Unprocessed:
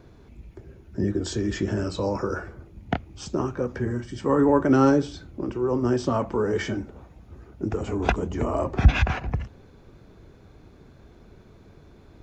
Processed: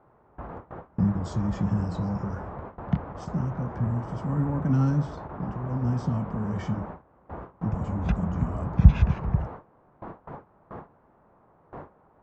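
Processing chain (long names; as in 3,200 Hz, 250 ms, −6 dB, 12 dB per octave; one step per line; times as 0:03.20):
low shelf with overshoot 260 Hz +13.5 dB, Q 3
noise in a band 87–1,100 Hz −26 dBFS
noise gate with hold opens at −14 dBFS
level −13.5 dB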